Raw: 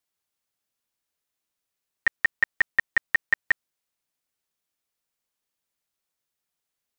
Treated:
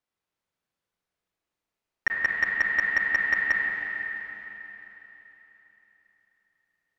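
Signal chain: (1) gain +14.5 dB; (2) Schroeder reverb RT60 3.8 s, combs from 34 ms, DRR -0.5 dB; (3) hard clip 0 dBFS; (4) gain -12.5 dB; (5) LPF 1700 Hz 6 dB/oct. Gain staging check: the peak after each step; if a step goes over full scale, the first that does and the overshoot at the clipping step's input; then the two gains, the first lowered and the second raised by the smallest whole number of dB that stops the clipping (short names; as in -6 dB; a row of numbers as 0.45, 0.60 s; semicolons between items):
+3.0, +4.5, 0.0, -12.5, -14.0 dBFS; step 1, 4.5 dB; step 1 +9.5 dB, step 4 -7.5 dB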